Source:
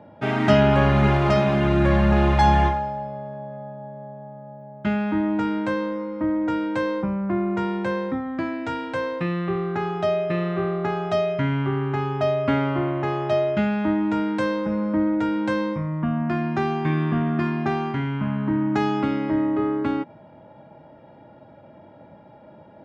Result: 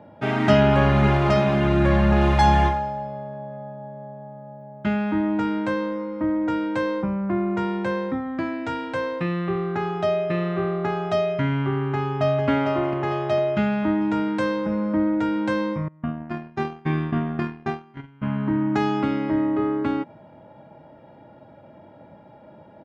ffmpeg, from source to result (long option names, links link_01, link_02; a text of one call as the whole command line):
ffmpeg -i in.wav -filter_complex "[0:a]asettb=1/sr,asplit=3[link_01][link_02][link_03];[link_01]atrim=end=2.214[link_04];[link_02]atrim=start=2.21:end=3.24,asetpts=PTS-STARTPTS,afade=type=in:duration=0.004:curve=qsin,afade=type=out:start_time=1.026:duration=0.004:curve=qsin,highshelf=frequency=5200:gain=5.5[link_05];[link_03]atrim=start=3.236[link_06];[link_04][link_05]acrossfade=duration=0.004:curve1=hsin:curve2=qsin[link_07];[link_07][link_06]acrossfade=duration=0.004:curve1=qsin:curve2=hsin,asplit=2[link_08][link_09];[link_09]afade=type=in:start_time=11.75:duration=0.01,afade=type=out:start_time=12.48:duration=0.01,aecho=0:1:450|900|1350|1800|2250|2700|3150:0.501187|0.275653|0.151609|0.083385|0.0458618|0.025224|0.0138732[link_10];[link_08][link_10]amix=inputs=2:normalize=0,asettb=1/sr,asplit=3[link_11][link_12][link_13];[link_11]atrim=end=15.884[link_14];[link_12]atrim=start=15.88:end=18.23,asetpts=PTS-STARTPTS,afade=type=in:duration=0.004:curve=qsin,afade=type=out:start_time=2.346:duration=0.004:curve=qsin,agate=range=-24dB:threshold=-23dB:ratio=16:release=100:detection=peak[link_15];[link_13]atrim=start=18.226[link_16];[link_14][link_15]acrossfade=duration=0.004:curve1=hsin:curve2=qsin[link_17];[link_17][link_16]acrossfade=duration=0.004:curve1=qsin:curve2=hsin" out.wav